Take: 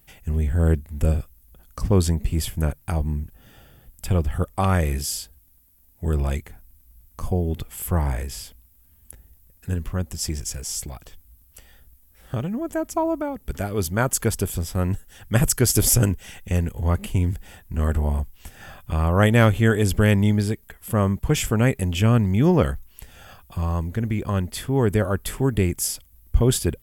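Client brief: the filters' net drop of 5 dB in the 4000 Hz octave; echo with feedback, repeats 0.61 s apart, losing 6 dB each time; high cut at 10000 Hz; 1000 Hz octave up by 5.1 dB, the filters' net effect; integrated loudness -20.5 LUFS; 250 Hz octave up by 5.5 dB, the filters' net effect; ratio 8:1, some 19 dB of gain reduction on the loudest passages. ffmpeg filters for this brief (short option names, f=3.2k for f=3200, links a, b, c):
-af "lowpass=10k,equalizer=f=250:t=o:g=7,equalizer=f=1k:t=o:g=6.5,equalizer=f=4k:t=o:g=-7.5,acompressor=threshold=-29dB:ratio=8,aecho=1:1:610|1220|1830|2440|3050|3660:0.501|0.251|0.125|0.0626|0.0313|0.0157,volume=13.5dB"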